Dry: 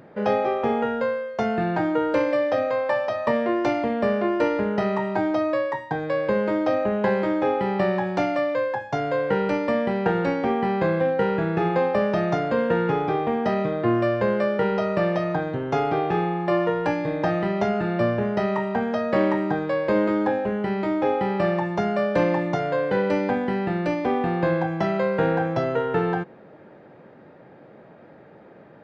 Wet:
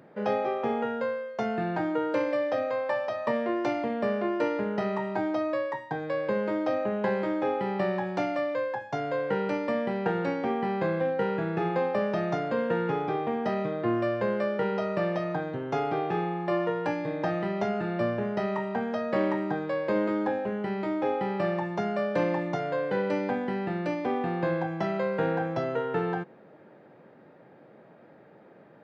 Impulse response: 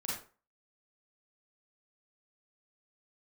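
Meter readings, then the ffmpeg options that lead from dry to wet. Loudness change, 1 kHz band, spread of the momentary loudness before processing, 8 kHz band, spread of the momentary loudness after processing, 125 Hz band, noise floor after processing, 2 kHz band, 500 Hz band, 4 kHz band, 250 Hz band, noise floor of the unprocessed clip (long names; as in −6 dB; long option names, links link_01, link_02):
−5.5 dB, −5.5 dB, 3 LU, can't be measured, 3 LU, −6.5 dB, −54 dBFS, −5.5 dB, −5.5 dB, −5.5 dB, −5.5 dB, −48 dBFS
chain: -af "highpass=110,volume=-5.5dB"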